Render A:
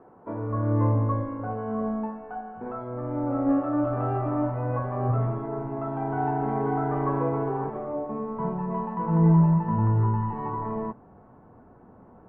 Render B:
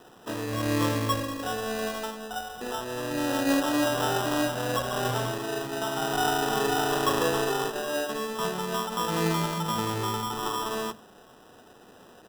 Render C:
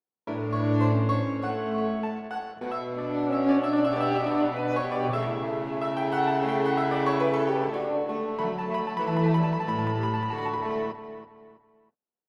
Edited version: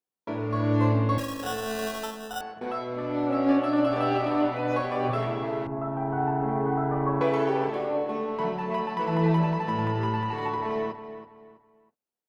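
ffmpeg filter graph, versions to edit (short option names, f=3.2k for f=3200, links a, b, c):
-filter_complex "[2:a]asplit=3[a][b][c];[a]atrim=end=1.182[d];[1:a]atrim=start=1.178:end=2.412[e];[b]atrim=start=2.408:end=5.672[f];[0:a]atrim=start=5.668:end=7.212[g];[c]atrim=start=7.208[h];[d][e]acrossfade=d=0.004:c1=hsin:c2=hsin[i];[i][f]acrossfade=d=0.004:c1=hsin:c2=hsin[j];[j][g]acrossfade=d=0.004:c1=hsin:c2=hsin[k];[k][h]acrossfade=d=0.004:c1=hsin:c2=hsin"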